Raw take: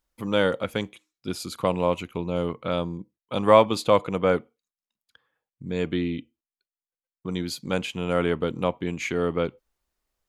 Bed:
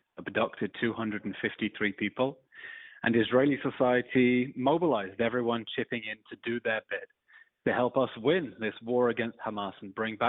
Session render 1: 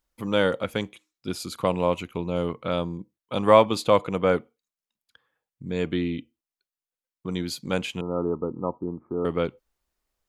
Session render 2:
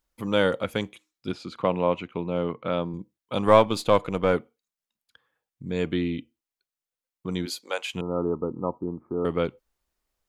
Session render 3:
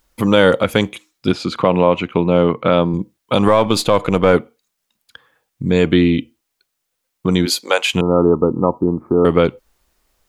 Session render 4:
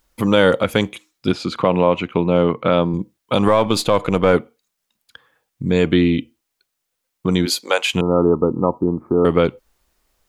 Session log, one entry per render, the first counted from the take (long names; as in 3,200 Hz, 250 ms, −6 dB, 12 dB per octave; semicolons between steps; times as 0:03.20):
0:08.01–0:09.25: Chebyshev low-pass with heavy ripple 1,300 Hz, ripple 6 dB
0:01.32–0:02.94: band-pass filter 120–3,100 Hz; 0:03.47–0:04.33: gain on one half-wave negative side −3 dB; 0:07.45–0:07.92: high-pass filter 260 Hz → 780 Hz 24 dB per octave
in parallel at −2.5 dB: downward compressor, threshold −31 dBFS, peak gain reduction 19.5 dB; on the sum: boost into a limiter +11.5 dB
level −2 dB